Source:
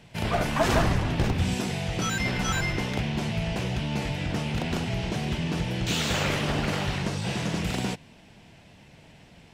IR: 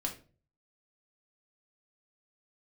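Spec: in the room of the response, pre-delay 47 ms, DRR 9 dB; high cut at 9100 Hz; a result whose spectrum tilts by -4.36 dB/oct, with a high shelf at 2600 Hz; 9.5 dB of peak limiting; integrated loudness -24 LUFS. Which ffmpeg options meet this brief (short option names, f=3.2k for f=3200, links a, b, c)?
-filter_complex "[0:a]lowpass=9.1k,highshelf=f=2.6k:g=5,alimiter=limit=-21.5dB:level=0:latency=1,asplit=2[a][b];[1:a]atrim=start_sample=2205,adelay=47[c];[b][c]afir=irnorm=-1:irlink=0,volume=-10.5dB[d];[a][d]amix=inputs=2:normalize=0,volume=5.5dB"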